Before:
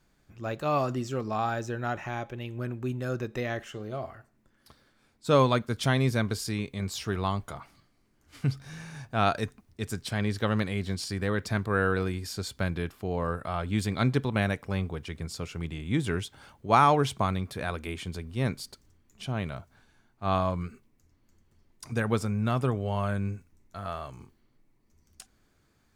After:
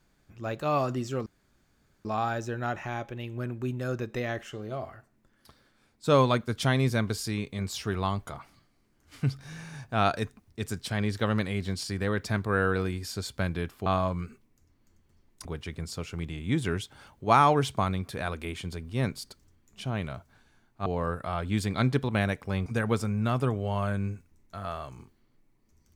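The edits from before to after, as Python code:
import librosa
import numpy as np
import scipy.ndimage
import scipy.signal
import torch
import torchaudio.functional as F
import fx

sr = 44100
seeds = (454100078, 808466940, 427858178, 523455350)

y = fx.edit(x, sr, fx.insert_room_tone(at_s=1.26, length_s=0.79),
    fx.swap(start_s=13.07, length_s=1.8, other_s=20.28, other_length_s=1.59), tone=tone)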